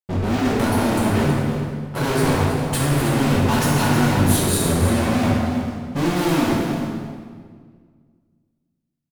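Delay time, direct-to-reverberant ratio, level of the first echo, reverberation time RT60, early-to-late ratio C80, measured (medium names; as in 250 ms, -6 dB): 319 ms, -5.5 dB, -10.5 dB, 1.8 s, 0.5 dB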